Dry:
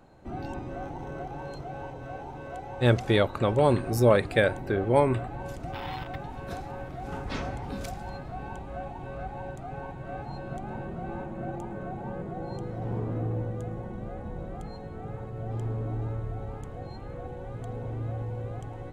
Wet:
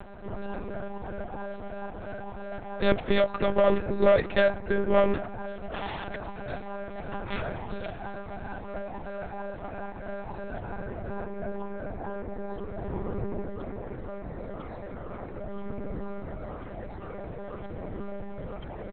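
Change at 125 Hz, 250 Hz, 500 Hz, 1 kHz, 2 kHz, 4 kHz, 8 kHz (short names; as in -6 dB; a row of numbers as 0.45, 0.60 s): -8.5 dB, -1.5 dB, +1.0 dB, -1.5 dB, 0.0 dB, -1.5 dB, under -30 dB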